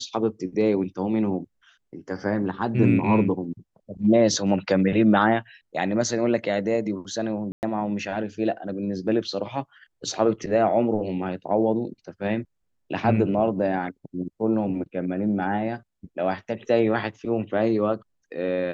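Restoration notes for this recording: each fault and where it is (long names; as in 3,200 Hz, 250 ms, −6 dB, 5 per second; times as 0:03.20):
0:07.52–0:07.63: drop-out 109 ms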